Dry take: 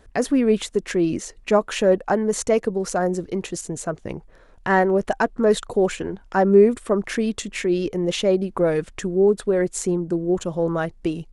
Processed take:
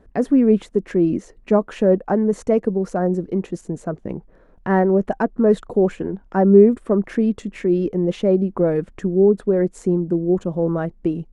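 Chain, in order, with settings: EQ curve 120 Hz 0 dB, 190 Hz +7 dB, 1800 Hz -5 dB, 3700 Hz -12 dB, 7300 Hz -14 dB; gain -1 dB

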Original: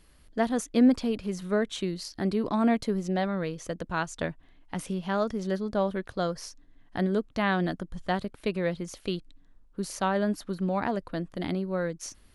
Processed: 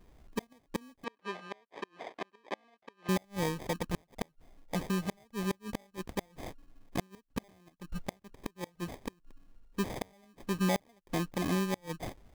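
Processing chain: flipped gate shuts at -19 dBFS, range -35 dB; sample-rate reducer 1400 Hz, jitter 0%; 1.04–3.09 BPF 490–3300 Hz

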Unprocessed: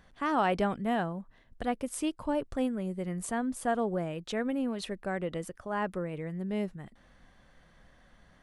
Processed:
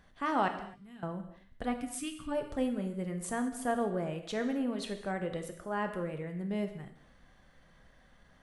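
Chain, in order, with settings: 0.48–1.03 passive tone stack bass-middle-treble 6-0-2; 1.72–2.32 spectral gain 320–1100 Hz -17 dB; non-linear reverb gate 0.29 s falling, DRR 5.5 dB; ending taper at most 260 dB/s; gain -2.5 dB

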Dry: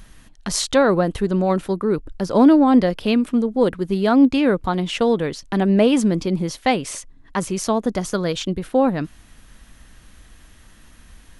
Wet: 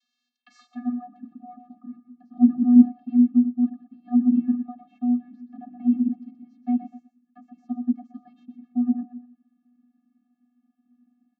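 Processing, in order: frequency-shifting echo 0.124 s, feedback 31%, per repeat -36 Hz, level -10 dB; band-pass sweep 4400 Hz -> 330 Hz, 0.36–0.87; vocoder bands 32, square 244 Hz

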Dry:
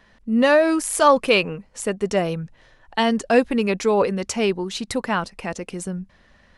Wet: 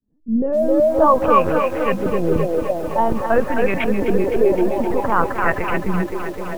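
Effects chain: opening faded in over 0.82 s; low-pass opened by the level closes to 2300 Hz, open at -17 dBFS; in parallel at 0 dB: negative-ratio compressor -25 dBFS, ratio -0.5; on the sum: LPC vocoder at 8 kHz pitch kept; on a send: narrowing echo 0.262 s, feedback 73%, band-pass 800 Hz, level -3 dB; on the sum: LFO low-pass saw up 0.52 Hz 240–2400 Hz; lo-fi delay 0.258 s, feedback 80%, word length 6-bit, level -10 dB; gain -2.5 dB

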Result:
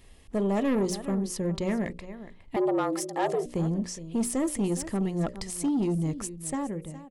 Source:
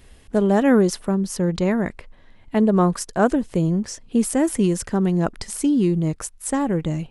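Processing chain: ending faded out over 0.78 s; notches 60/120/180/240/300/360/420/480/540/600 Hz; echo 0.414 s -16.5 dB; soft clip -16.5 dBFS, distortion -12 dB; 2.56–3.46 frequency shift +150 Hz; notch 1500 Hz, Q 6.2; gain -4.5 dB

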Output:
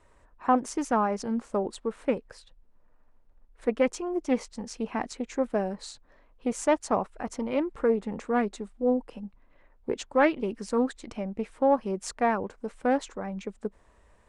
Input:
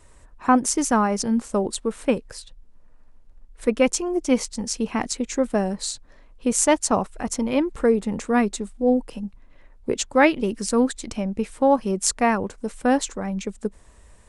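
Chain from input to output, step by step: overdrive pedal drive 9 dB, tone 1100 Hz, clips at -1 dBFS; Doppler distortion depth 0.13 ms; gain -5 dB

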